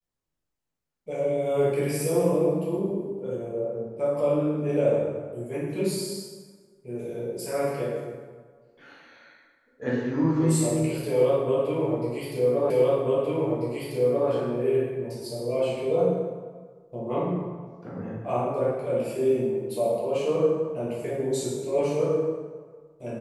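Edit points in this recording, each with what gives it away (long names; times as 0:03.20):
0:12.70: the same again, the last 1.59 s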